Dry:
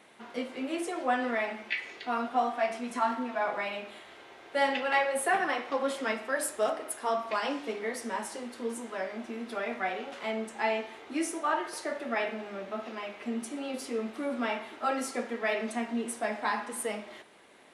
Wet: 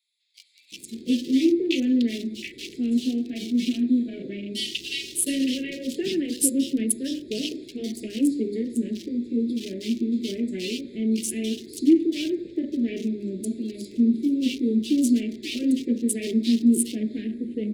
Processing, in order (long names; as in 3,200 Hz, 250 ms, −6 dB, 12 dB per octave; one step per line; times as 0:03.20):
adaptive Wiener filter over 15 samples
in parallel at −2 dB: brickwall limiter −23 dBFS, peak gain reduction 8.5 dB
on the sum: elliptic band-stop filter 340–3,000 Hz, stop band 60 dB
multiband delay without the direct sound highs, lows 720 ms, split 2,200 Hz
automatic gain control gain up to 11 dB